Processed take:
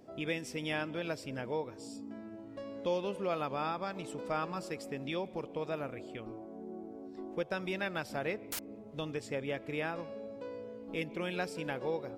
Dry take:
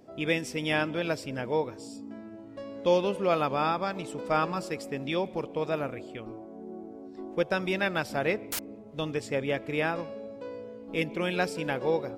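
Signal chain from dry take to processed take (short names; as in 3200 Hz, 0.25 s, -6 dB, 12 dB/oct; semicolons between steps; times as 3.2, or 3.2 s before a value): compressor 1.5:1, threshold -40 dBFS, peak gain reduction 8 dB; gain -2 dB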